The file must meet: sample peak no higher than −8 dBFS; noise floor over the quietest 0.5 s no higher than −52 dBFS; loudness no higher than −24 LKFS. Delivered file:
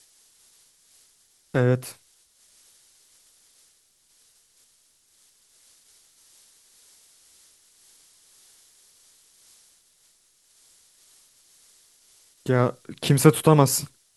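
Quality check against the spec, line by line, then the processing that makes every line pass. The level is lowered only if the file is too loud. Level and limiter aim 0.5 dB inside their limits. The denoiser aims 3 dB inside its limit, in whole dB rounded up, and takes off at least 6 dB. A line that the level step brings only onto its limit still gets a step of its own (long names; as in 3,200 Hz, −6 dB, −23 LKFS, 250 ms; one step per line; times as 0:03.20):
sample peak −2.5 dBFS: out of spec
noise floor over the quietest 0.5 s −63 dBFS: in spec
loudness −21.5 LKFS: out of spec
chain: level −3 dB
brickwall limiter −8.5 dBFS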